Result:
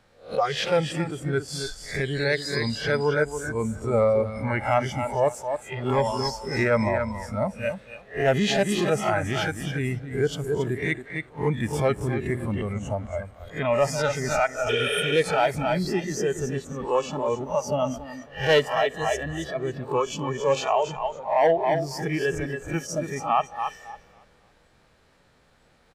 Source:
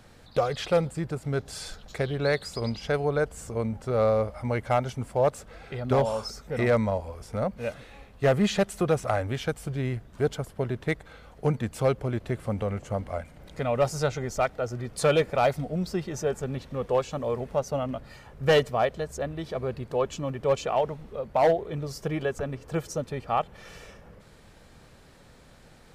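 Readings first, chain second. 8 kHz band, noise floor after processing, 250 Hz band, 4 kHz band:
+5.0 dB, -60 dBFS, +2.5 dB, +6.5 dB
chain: spectral swells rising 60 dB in 0.42 s; feedback echo 0.277 s, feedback 35%, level -7 dB; limiter -16.5 dBFS, peak gain reduction 7 dB; spectral repair 14.71–15.09, 390–8300 Hz after; high shelf 5600 Hz -8.5 dB; spectral noise reduction 13 dB; low shelf 460 Hz -7 dB; gain +7.5 dB

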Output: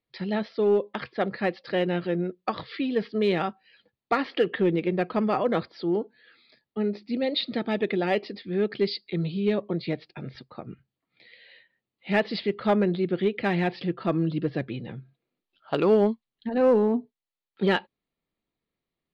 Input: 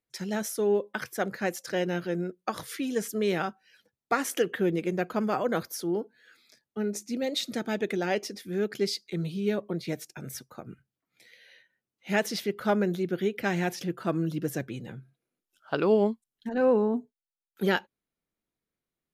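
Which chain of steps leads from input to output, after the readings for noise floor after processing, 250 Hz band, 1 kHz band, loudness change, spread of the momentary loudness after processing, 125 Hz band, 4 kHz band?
under -85 dBFS, +3.5 dB, +2.5 dB, +3.0 dB, 11 LU, +3.5 dB, +2.0 dB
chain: steep low-pass 4700 Hz 96 dB/oct; notch 1500 Hz, Q 7.2; in parallel at -6 dB: overloaded stage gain 21 dB

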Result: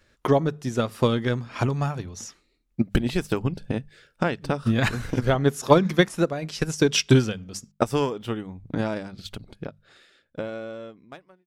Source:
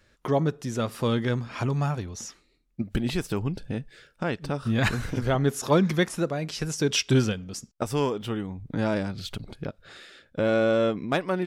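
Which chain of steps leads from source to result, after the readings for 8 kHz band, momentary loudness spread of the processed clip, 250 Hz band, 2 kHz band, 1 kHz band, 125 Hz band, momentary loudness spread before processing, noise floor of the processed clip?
+0.5 dB, 19 LU, +2.0 dB, +1.5 dB, +3.0 dB, +1.5 dB, 15 LU, -69 dBFS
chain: ending faded out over 3.73 s; notches 50/100/150/200 Hz; transient shaper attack +8 dB, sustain -2 dB

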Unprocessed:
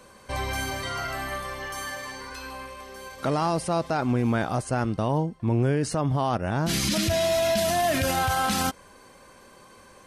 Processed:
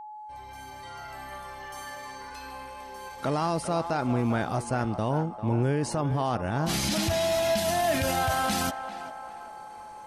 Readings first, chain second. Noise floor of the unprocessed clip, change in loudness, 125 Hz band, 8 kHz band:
-52 dBFS, -1.5 dB, -2.5 dB, -3.0 dB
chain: opening faded in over 3.25 s; whine 850 Hz -37 dBFS; narrowing echo 0.396 s, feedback 55%, band-pass 950 Hz, level -9 dB; gain -2.5 dB

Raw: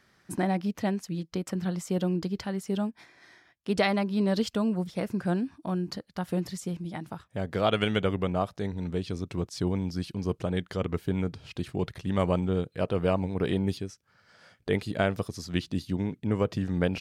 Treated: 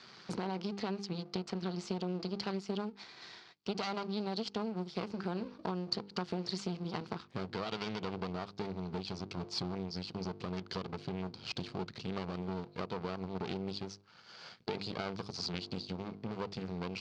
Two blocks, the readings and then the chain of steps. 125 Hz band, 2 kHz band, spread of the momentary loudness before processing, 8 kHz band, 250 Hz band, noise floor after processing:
-11.0 dB, -10.0 dB, 8 LU, -8.0 dB, -10.0 dB, -58 dBFS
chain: high shelf 4200 Hz -5.5 dB; notches 50/100/150/200/250/300/350 Hz; vocal rider 2 s; limiter -19.5 dBFS, peak gain reduction 10.5 dB; compressor 6:1, threshold -39 dBFS, peak gain reduction 14.5 dB; half-wave rectifier; speaker cabinet 170–6000 Hz, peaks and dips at 280 Hz -8 dB, 580 Hz -7 dB, 1800 Hz -7 dB, 4500 Hz +10 dB; gain +11 dB

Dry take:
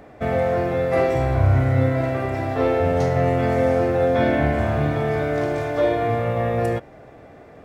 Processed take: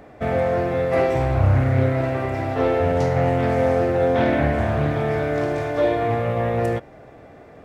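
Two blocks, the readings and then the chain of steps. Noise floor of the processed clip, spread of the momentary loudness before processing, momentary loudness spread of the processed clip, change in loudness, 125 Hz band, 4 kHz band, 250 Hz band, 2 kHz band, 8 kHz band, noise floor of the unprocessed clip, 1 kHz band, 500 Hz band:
-45 dBFS, 5 LU, 5 LU, 0.0 dB, 0.0 dB, 0.0 dB, 0.0 dB, 0.0 dB, n/a, -45 dBFS, 0.0 dB, 0.0 dB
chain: Doppler distortion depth 0.35 ms

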